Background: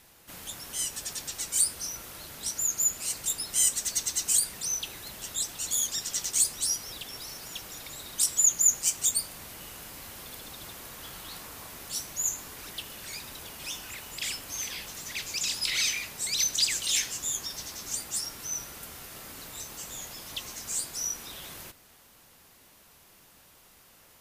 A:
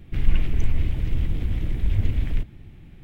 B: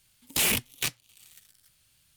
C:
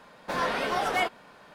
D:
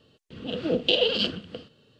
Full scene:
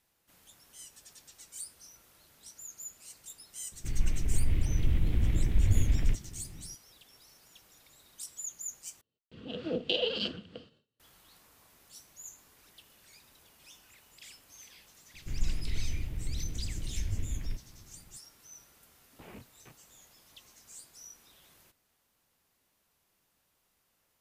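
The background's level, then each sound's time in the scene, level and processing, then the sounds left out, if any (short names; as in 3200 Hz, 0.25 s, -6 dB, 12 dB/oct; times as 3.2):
background -18 dB
3.72 add A -10 dB + AGC
9.01 replace with D -8 dB + gate with hold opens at -48 dBFS, closes at -54 dBFS
15.14 add A -12 dB
18.83 add B -16 dB + LPF 1100 Hz
not used: C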